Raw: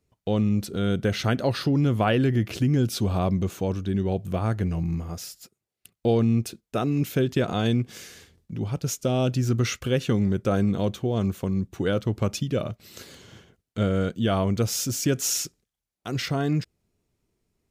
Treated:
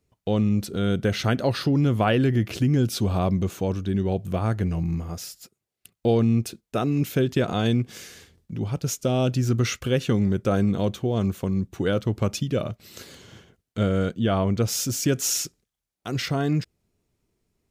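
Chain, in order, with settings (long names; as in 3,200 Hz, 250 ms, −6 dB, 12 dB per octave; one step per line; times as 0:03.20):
0:14.13–0:14.67: high-shelf EQ 4,700 Hz → 7,500 Hz −10.5 dB
level +1 dB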